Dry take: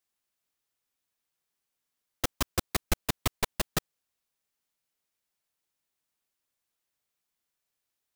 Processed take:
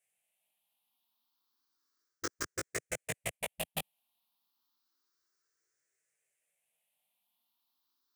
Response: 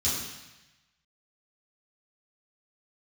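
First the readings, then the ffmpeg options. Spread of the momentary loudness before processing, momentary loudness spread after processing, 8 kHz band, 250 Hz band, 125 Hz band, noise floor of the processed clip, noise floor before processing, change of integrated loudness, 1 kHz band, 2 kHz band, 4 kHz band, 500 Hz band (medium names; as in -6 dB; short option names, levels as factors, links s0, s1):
5 LU, 5 LU, -4.0 dB, -10.5 dB, -12.0 dB, under -85 dBFS, -85 dBFS, -6.5 dB, -9.0 dB, -3.5 dB, -8.0 dB, -4.5 dB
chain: -af "afftfilt=real='re*pow(10,16/40*sin(2*PI*(0.5*log(max(b,1)*sr/1024/100)/log(2)-(0.31)*(pts-256)/sr)))':imag='im*pow(10,16/40*sin(2*PI*(0.5*log(max(b,1)*sr/1024/100)/log(2)-(0.31)*(pts-256)/sr)))':win_size=1024:overlap=0.75,highpass=f=280:p=1,areverse,acompressor=threshold=0.0251:ratio=10,areverse,flanger=delay=17.5:depth=4.7:speed=0.32,volume=1.33"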